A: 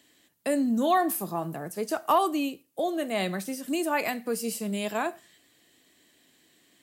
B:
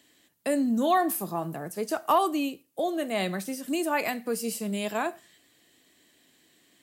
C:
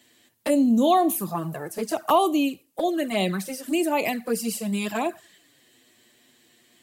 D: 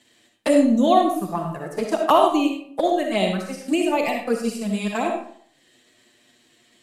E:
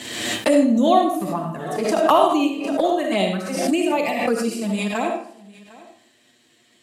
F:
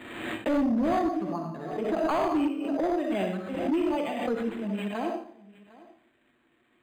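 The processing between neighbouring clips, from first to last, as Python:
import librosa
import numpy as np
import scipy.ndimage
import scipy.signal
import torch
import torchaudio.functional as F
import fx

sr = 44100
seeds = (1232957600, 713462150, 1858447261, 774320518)

y1 = x
y2 = fx.env_flanger(y1, sr, rest_ms=8.9, full_db=-23.5)
y2 = F.gain(torch.from_numpy(y2), 6.5).numpy()
y3 = scipy.signal.sosfilt(scipy.signal.butter(2, 9000.0, 'lowpass', fs=sr, output='sos'), y2)
y3 = fx.transient(y3, sr, attack_db=5, sustain_db=-8)
y3 = fx.rev_freeverb(y3, sr, rt60_s=0.58, hf_ratio=0.65, predelay_ms=20, drr_db=2.5)
y4 = scipy.signal.sosfilt(scipy.signal.butter(2, 41.0, 'highpass', fs=sr, output='sos'), y3)
y4 = y4 + 10.0 ** (-21.5 / 20.0) * np.pad(y4, (int(754 * sr / 1000.0), 0))[:len(y4)]
y4 = fx.pre_swell(y4, sr, db_per_s=42.0)
y5 = fx.peak_eq(y4, sr, hz=320.0, db=5.5, octaves=0.58)
y5 = np.clip(y5, -10.0 ** (-13.0 / 20.0), 10.0 ** (-13.0 / 20.0))
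y5 = np.interp(np.arange(len(y5)), np.arange(len(y5))[::8], y5[::8])
y5 = F.gain(torch.from_numpy(y5), -8.5).numpy()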